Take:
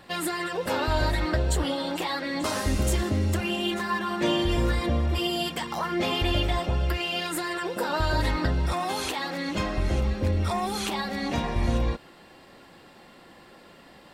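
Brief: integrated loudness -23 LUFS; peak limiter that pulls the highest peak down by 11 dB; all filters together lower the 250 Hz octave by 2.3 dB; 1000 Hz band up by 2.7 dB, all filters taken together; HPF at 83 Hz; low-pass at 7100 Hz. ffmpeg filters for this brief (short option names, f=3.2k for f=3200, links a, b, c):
-af "highpass=83,lowpass=7.1k,equalizer=f=250:t=o:g=-3.5,equalizer=f=1k:t=o:g=3.5,volume=9.5dB,alimiter=limit=-14.5dB:level=0:latency=1"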